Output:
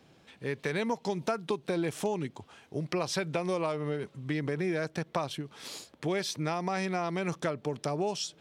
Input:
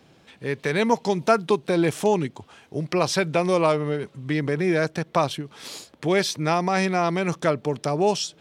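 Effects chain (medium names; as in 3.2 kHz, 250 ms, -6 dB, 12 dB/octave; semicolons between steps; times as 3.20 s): compression, threshold -22 dBFS, peak gain reduction 9.5 dB; trim -5 dB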